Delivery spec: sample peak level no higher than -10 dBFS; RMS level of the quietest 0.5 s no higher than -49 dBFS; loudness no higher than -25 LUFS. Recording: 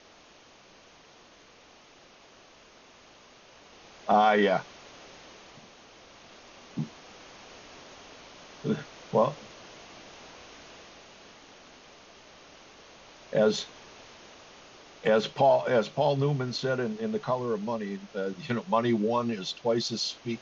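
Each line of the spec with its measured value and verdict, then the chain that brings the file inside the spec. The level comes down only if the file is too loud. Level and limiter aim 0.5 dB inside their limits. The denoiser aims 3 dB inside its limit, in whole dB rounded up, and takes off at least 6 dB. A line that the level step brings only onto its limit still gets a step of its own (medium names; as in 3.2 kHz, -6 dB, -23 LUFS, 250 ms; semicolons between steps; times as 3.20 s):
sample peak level -11.5 dBFS: pass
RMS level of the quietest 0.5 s -55 dBFS: pass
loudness -28.0 LUFS: pass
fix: none needed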